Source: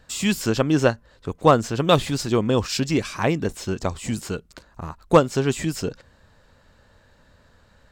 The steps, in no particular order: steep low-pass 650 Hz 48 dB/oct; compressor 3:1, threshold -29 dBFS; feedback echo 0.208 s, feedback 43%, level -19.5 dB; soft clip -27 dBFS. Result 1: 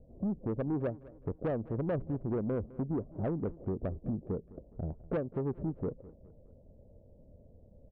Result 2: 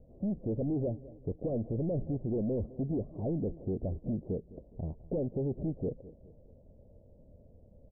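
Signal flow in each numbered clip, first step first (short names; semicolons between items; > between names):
steep low-pass > compressor > soft clip > feedback echo; soft clip > feedback echo > compressor > steep low-pass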